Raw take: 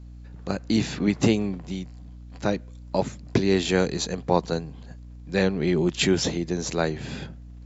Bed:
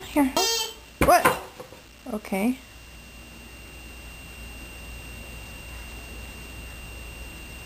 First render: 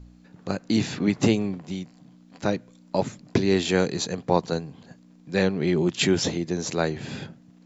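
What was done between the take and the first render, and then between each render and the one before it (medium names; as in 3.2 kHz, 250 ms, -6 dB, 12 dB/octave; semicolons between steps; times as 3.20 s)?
de-hum 60 Hz, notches 2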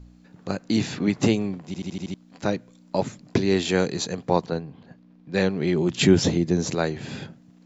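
1.66 s: stutter in place 0.08 s, 6 plays; 4.46–5.34 s: distance through air 200 m; 5.90–6.75 s: bass shelf 370 Hz +8.5 dB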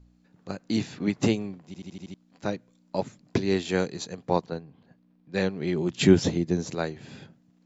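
upward expansion 1.5:1, over -32 dBFS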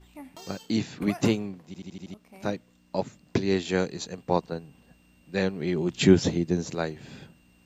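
add bed -23 dB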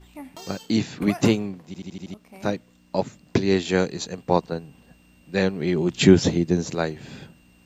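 trim +4.5 dB; peak limiter -1 dBFS, peak gain reduction 1.5 dB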